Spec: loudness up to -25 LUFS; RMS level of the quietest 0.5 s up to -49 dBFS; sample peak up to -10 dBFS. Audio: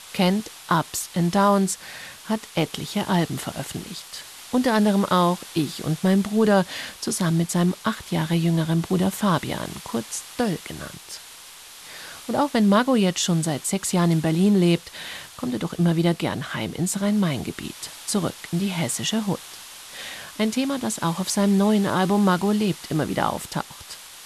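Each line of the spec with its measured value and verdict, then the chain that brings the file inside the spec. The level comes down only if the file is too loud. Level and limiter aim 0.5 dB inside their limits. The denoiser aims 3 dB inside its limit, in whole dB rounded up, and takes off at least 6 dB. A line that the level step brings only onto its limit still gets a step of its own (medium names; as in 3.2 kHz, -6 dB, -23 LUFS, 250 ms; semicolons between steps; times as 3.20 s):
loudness -23.0 LUFS: fail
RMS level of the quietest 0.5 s -44 dBFS: fail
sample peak -7.0 dBFS: fail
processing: noise reduction 6 dB, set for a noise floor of -44 dBFS; trim -2.5 dB; peak limiter -10.5 dBFS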